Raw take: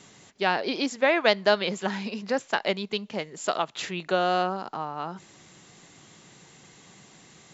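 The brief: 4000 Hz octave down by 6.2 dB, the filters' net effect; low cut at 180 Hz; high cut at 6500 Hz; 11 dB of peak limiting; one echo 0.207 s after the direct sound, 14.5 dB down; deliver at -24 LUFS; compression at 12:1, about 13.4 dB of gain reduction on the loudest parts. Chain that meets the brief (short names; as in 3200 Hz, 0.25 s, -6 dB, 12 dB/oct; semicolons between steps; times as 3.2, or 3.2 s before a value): HPF 180 Hz; LPF 6500 Hz; bell 4000 Hz -8 dB; compressor 12:1, threshold -29 dBFS; limiter -28 dBFS; echo 0.207 s -14.5 dB; gain +15 dB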